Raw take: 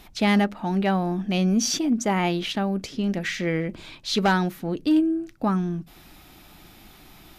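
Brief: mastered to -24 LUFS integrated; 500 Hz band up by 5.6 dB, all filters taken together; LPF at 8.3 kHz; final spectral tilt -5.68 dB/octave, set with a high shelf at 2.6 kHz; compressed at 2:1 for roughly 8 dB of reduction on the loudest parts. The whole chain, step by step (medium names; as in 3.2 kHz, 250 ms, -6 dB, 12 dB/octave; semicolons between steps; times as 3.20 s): low-pass 8.3 kHz; peaking EQ 500 Hz +8 dB; treble shelf 2.6 kHz -4.5 dB; compression 2:1, threshold -29 dBFS; trim +5 dB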